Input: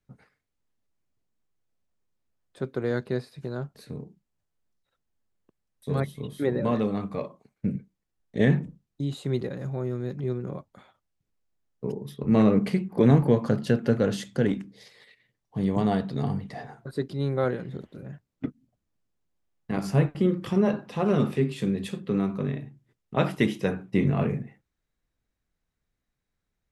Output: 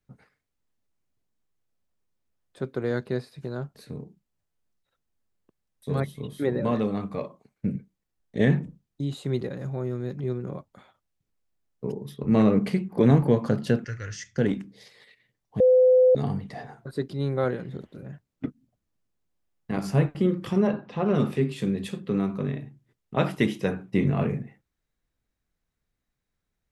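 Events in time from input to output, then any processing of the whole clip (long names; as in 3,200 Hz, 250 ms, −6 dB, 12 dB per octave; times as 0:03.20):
0:13.84–0:14.38: drawn EQ curve 100 Hz 0 dB, 220 Hz −28 dB, 320 Hz −18 dB, 770 Hz −23 dB, 1,100 Hz −12 dB, 1,900 Hz +4 dB, 3,800 Hz −13 dB, 5,800 Hz +7 dB, 11,000 Hz −25 dB
0:15.60–0:16.15: beep over 509 Hz −13.5 dBFS
0:20.67–0:21.15: high-frequency loss of the air 150 metres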